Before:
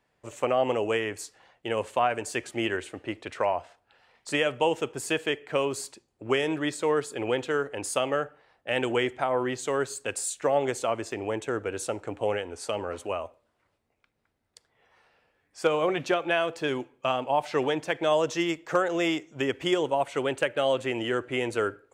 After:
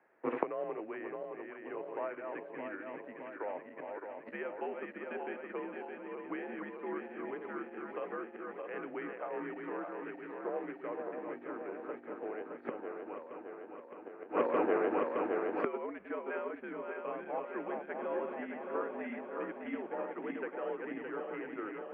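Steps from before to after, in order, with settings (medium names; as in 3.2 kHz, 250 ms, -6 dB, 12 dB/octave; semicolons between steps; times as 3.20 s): backward echo that repeats 308 ms, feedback 81%, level -4.5 dB; in parallel at -3 dB: companded quantiser 4-bit; on the sum: inverted gate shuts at -20 dBFS, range -24 dB; mistuned SSB -87 Hz 360–2200 Hz; 4.32–5.60 s: three bands compressed up and down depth 40%; trim +5 dB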